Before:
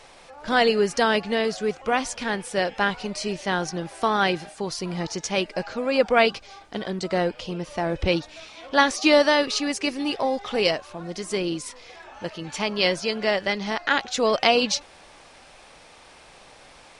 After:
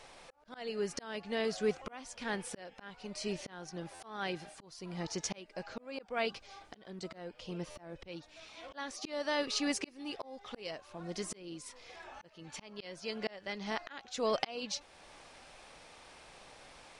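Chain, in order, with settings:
volume swells 685 ms
buffer that repeats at 0:03.94/0:07.70, samples 512, times 4
level −6 dB

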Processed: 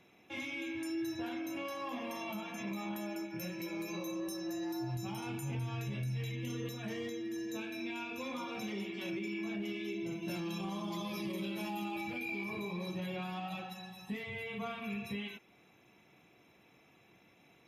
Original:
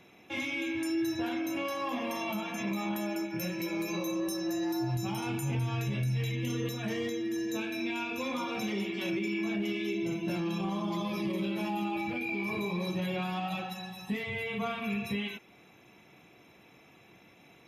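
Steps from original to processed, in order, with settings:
0:10.22–0:12.44: high-shelf EQ 3,900 Hz +9 dB
level −6.5 dB

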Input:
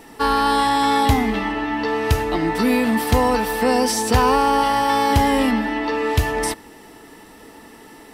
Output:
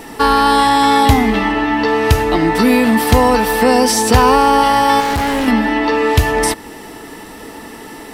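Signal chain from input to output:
in parallel at +1 dB: downward compressor, threshold −27 dBFS, peak gain reduction 14.5 dB
0:05.00–0:05.48: on the sum: gain into a clipping stage and back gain 18.5 dB
level +4 dB

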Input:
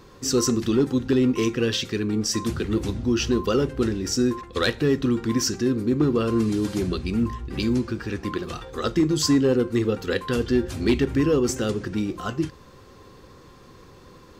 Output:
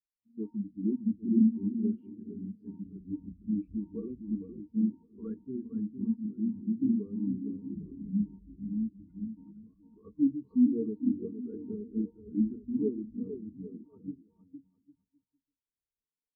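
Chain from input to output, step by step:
speed change −12%
head-to-tape spacing loss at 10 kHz 43 dB
mains-hum notches 60/120/180/240 Hz
comb filter 4.3 ms, depth 30%
bouncing-ball delay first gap 460 ms, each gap 0.75×, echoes 5
every bin expanded away from the loudest bin 2.5 to 1
level −6 dB

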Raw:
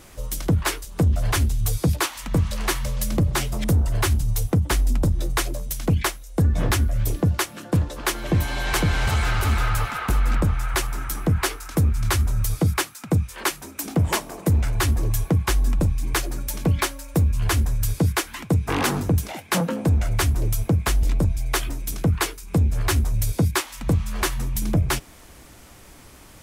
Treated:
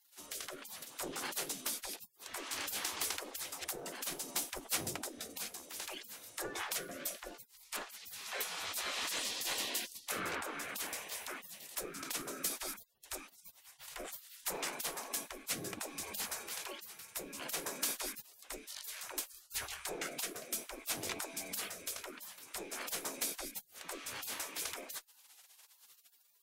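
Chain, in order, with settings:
rotating-speaker cabinet horn 0.6 Hz
gate on every frequency bin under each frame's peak −30 dB weak
harmonic generator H 8 −35 dB, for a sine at −20.5 dBFS
level +1.5 dB

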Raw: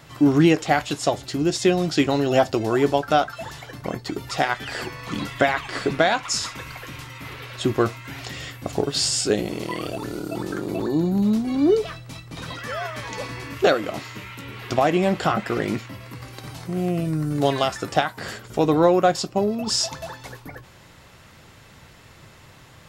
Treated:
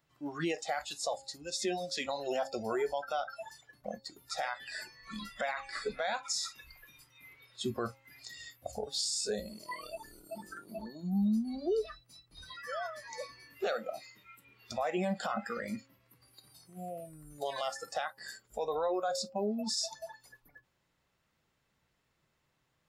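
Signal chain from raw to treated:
noise reduction from a noise print of the clip's start 21 dB
parametric band 100 Hz −13.5 dB 0.24 octaves
hum removal 270.5 Hz, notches 3
brickwall limiter −17 dBFS, peak gain reduction 11 dB
level −7.5 dB

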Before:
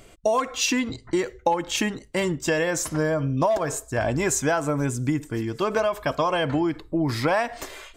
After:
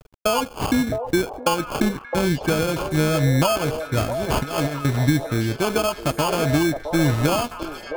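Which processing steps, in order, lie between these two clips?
noise gate with hold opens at −41 dBFS
low-shelf EQ 250 Hz +11 dB
decimation without filtering 23×
0:04.04–0:04.85: compressor whose output falls as the input rises −23 dBFS, ratio −0.5
dead-zone distortion −39.5 dBFS
echo through a band-pass that steps 663 ms, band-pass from 580 Hz, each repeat 1.4 octaves, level −4 dB

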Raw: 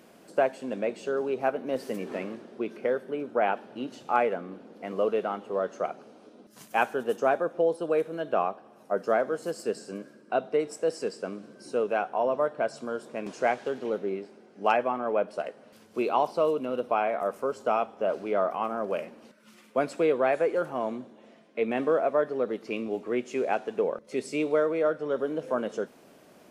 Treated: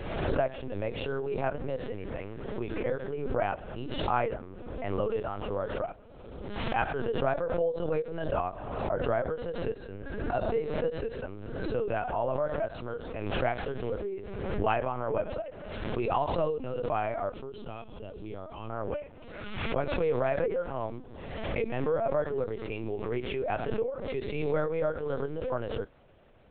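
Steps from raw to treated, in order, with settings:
0:17.33–0:18.71: flat-topped bell 1,000 Hz −13.5 dB 2.6 octaves
linear-prediction vocoder at 8 kHz pitch kept
background raised ahead of every attack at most 37 dB per second
level −4.5 dB

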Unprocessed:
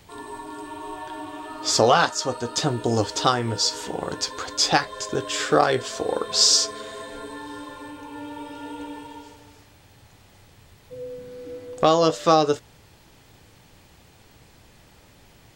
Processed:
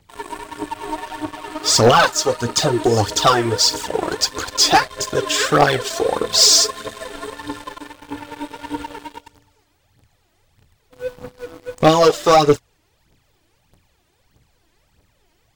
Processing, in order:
phase shifter 1.6 Hz, delay 3.3 ms, feedback 66%
leveller curve on the samples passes 3
level −6 dB

